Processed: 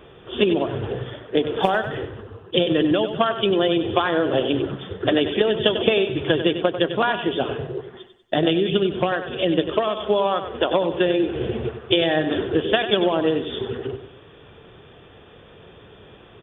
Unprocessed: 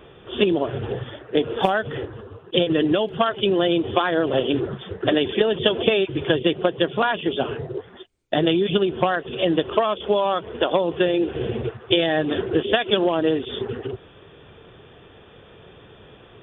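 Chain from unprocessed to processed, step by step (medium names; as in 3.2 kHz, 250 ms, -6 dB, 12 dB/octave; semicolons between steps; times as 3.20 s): on a send: feedback delay 96 ms, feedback 39%, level -10 dB; 8.49–9.98 s: on the sum: dynamic bell 950 Hz, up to -5 dB, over -33 dBFS, Q 1.6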